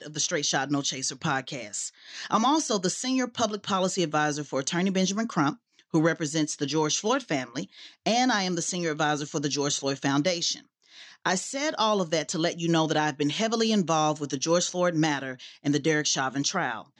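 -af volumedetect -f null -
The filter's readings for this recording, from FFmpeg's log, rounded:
mean_volume: -27.1 dB
max_volume: -10.3 dB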